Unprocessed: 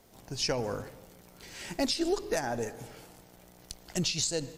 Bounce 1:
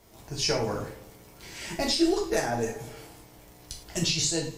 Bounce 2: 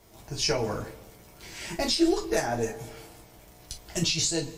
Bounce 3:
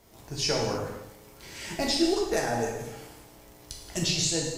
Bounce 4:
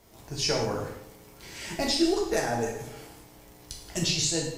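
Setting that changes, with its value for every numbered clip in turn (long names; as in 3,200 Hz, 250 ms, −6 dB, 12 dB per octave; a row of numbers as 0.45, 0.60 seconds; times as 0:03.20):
reverb whose tail is shaped and stops, gate: 140, 80, 330, 230 milliseconds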